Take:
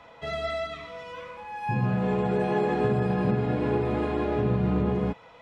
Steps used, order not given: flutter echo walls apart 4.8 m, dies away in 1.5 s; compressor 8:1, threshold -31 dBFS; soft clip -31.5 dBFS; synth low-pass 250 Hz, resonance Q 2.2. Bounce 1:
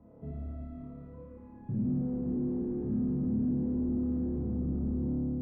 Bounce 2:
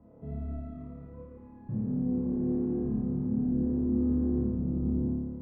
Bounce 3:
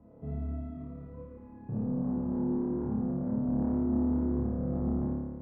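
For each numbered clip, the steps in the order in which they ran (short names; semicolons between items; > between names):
flutter echo > soft clip > compressor > synth low-pass; soft clip > synth low-pass > compressor > flutter echo; compressor > synth low-pass > soft clip > flutter echo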